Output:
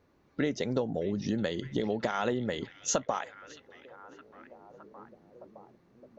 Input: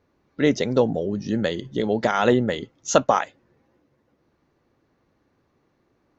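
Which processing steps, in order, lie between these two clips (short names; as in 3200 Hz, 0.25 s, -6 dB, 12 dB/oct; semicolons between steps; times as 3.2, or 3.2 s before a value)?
compressor 6:1, threshold -27 dBFS, peak gain reduction 15.5 dB; on a send: delay with a stepping band-pass 0.616 s, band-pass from 3000 Hz, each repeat -0.7 oct, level -11 dB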